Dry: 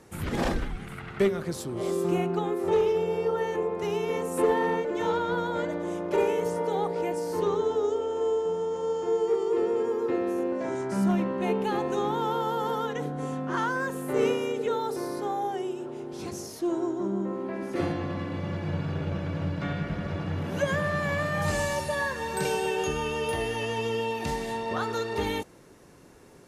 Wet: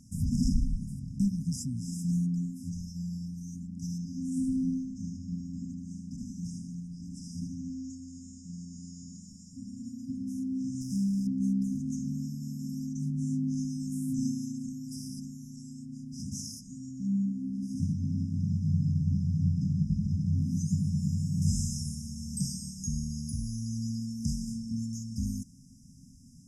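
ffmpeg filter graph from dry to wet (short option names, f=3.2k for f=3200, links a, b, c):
-filter_complex "[0:a]asettb=1/sr,asplit=3[a][b][c];[a]atrim=end=3.984[d];[b]atrim=start=3.98:end=7.9,asetpts=PTS-STARTPTS,afade=t=in:d=0.004:c=qsin,afade=t=out:st=3.916:d=0.004:c=qsin,lowpass=9.4k,aemphasis=mode=reproduction:type=cd,aecho=1:1:77|154|231|308|385:0.631|0.252|0.101|0.0404|0.0162,atrim=end_sample=172872[e];[c]atrim=start=7.896[f];[d][e]acrossfade=d=0.004:c1=hsin:c2=qsin[g];[g][f]acrossfade=d=0.004:c1=qsin:c2=hsin,asettb=1/sr,asplit=3[h][i][j];[h]atrim=end=10.814[k];[i]atrim=start=10.81:end=11.27,asetpts=PTS-STARTPTS,afade=t=in:d=0.004:c=qsin,afade=t=out:st=0.456:d=0.004:c=qsin,lowpass=8.6k,acrusher=bits=7:dc=4:mix=0:aa=0.000001,acompressor=threshold=-28dB:ratio=10:attack=3.2:release=140:knee=1:detection=peak[l];[j]atrim=start=11.266[m];[k][l]acrossfade=d=0.004:c1=hsin:c2=qsin[n];[n][m]acrossfade=d=0.004:c1=qsin:c2=hsin,lowpass=8.2k,afftfilt=real='re*(1-between(b*sr/4096,270,4900))':imag='im*(1-between(b*sr/4096,270,4900))':win_size=4096:overlap=0.75,volume=4dB"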